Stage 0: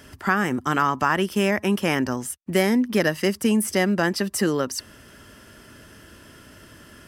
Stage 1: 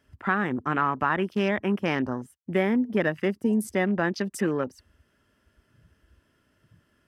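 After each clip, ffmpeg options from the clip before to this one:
ffmpeg -i in.wav -af "afwtdn=0.0224,bass=frequency=250:gain=0,treble=frequency=4000:gain=-6,volume=-3.5dB" out.wav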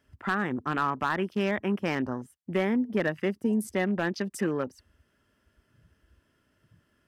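ffmpeg -i in.wav -af "asoftclip=type=hard:threshold=-15.5dB,volume=-2.5dB" out.wav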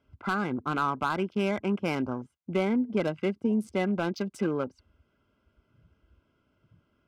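ffmpeg -i in.wav -af "adynamicsmooth=sensitivity=7.5:basefreq=3800,asuperstop=centerf=1800:order=12:qfactor=5.3" out.wav

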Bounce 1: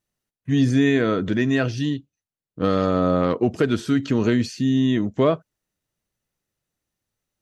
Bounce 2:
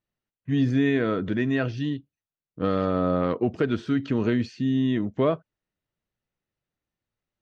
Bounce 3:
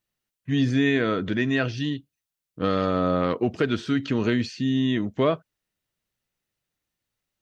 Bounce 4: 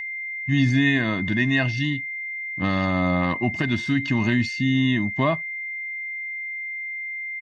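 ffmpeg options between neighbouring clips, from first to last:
ffmpeg -i in.wav -af "lowpass=3500,volume=-4dB" out.wav
ffmpeg -i in.wav -af "highshelf=frequency=2000:gain=9.5" out.wav
ffmpeg -i in.wav -af "aeval=exprs='val(0)+0.0316*sin(2*PI*2100*n/s)':channel_layout=same,aecho=1:1:1.1:0.9" out.wav

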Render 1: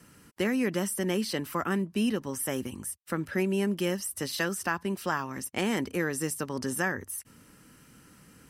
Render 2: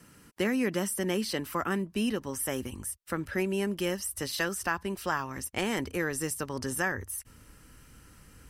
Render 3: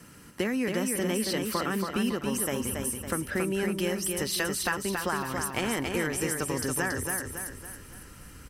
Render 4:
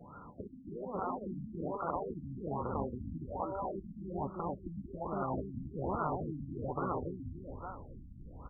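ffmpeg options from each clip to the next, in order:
ffmpeg -i in.wav -af "asubboost=boost=7.5:cutoff=66" out.wav
ffmpeg -i in.wav -filter_complex "[0:a]acompressor=threshold=-33dB:ratio=2.5,asplit=2[link_01][link_02];[link_02]aecho=0:1:278|556|834|1112|1390|1668:0.596|0.268|0.121|0.0543|0.0244|0.011[link_03];[link_01][link_03]amix=inputs=2:normalize=0,volume=5dB" out.wav
ffmpeg -i in.wav -af "lowshelf=frequency=530:width_type=q:width=1.5:gain=-8,afftfilt=real='re*lt(hypot(re,im),0.0631)':imag='im*lt(hypot(re,im),0.0631)':win_size=1024:overlap=0.75,afftfilt=real='re*lt(b*sr/1024,290*pow(1500/290,0.5+0.5*sin(2*PI*1.2*pts/sr)))':imag='im*lt(b*sr/1024,290*pow(1500/290,0.5+0.5*sin(2*PI*1.2*pts/sr)))':win_size=1024:overlap=0.75,volume=7.5dB" out.wav

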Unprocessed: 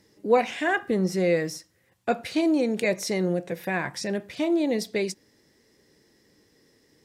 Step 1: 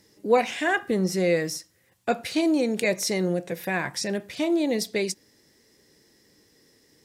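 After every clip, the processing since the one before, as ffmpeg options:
ffmpeg -i in.wav -af "highshelf=frequency=3900:gain=6.5" out.wav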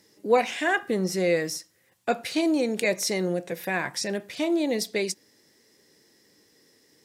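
ffmpeg -i in.wav -af "highpass=frequency=190:poles=1" out.wav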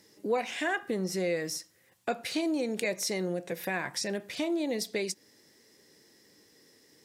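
ffmpeg -i in.wav -af "acompressor=threshold=-32dB:ratio=2" out.wav

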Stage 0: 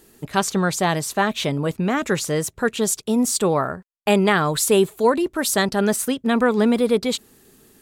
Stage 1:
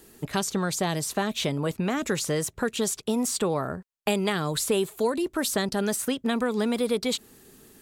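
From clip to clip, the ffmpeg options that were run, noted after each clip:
ffmpeg -i in.wav -filter_complex "[0:a]acrossover=split=540|3500[link_01][link_02][link_03];[link_01]acompressor=threshold=-26dB:ratio=4[link_04];[link_02]acompressor=threshold=-31dB:ratio=4[link_05];[link_03]acompressor=threshold=-29dB:ratio=4[link_06];[link_04][link_05][link_06]amix=inputs=3:normalize=0" out.wav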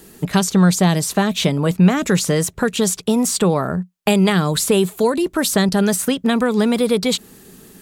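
ffmpeg -i in.wav -af "equalizer=frequency=180:width_type=o:width=0.25:gain=10.5,volume=8dB" out.wav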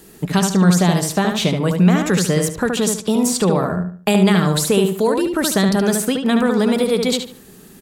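ffmpeg -i in.wav -filter_complex "[0:a]asplit=2[link_01][link_02];[link_02]adelay=73,lowpass=frequency=3100:poles=1,volume=-4dB,asplit=2[link_03][link_04];[link_04]adelay=73,lowpass=frequency=3100:poles=1,volume=0.33,asplit=2[link_05][link_06];[link_06]adelay=73,lowpass=frequency=3100:poles=1,volume=0.33,asplit=2[link_07][link_08];[link_08]adelay=73,lowpass=frequency=3100:poles=1,volume=0.33[link_09];[link_01][link_03][link_05][link_07][link_09]amix=inputs=5:normalize=0,volume=-1dB" out.wav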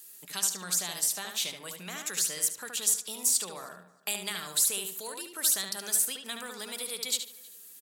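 ffmpeg -i in.wav -filter_complex "[0:a]aderivative,asplit=2[link_01][link_02];[link_02]adelay=314,lowpass=frequency=2800:poles=1,volume=-21.5dB,asplit=2[link_03][link_04];[link_04]adelay=314,lowpass=frequency=2800:poles=1,volume=0.32[link_05];[link_01][link_03][link_05]amix=inputs=3:normalize=0,volume=-3dB" out.wav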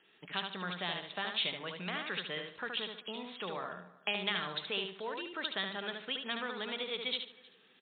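ffmpeg -i in.wav -af "volume=3dB" -ar 8000 -c:a libmp3lame -b:a 32k out.mp3

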